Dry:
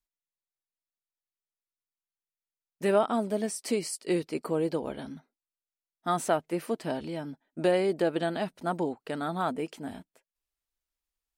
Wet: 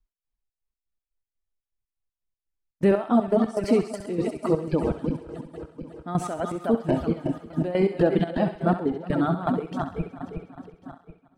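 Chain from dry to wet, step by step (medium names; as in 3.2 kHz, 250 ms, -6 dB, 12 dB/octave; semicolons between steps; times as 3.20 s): backward echo that repeats 182 ms, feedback 74%, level -6 dB; RIAA curve playback; gate -47 dBFS, range -6 dB; reverb removal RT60 1.9 s; in parallel at +1.5 dB: peak limiter -21.5 dBFS, peak gain reduction 12 dB; on the sum: trance gate "x.xx.x.x." 122 bpm -12 dB; on a send: thinning echo 66 ms, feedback 50%, high-pass 820 Hz, level -8.5 dB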